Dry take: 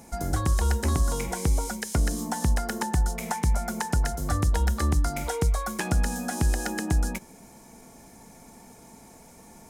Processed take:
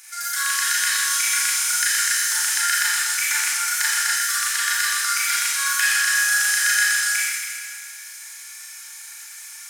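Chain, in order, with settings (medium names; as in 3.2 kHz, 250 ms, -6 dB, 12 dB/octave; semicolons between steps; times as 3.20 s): Chebyshev high-pass 1.5 kHz, order 4; Schroeder reverb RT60 1.9 s, combs from 27 ms, DRR -8.5 dB; in parallel at -9.5 dB: saturation -27.5 dBFS, distortion -12 dB; on the sum: trim +6.5 dB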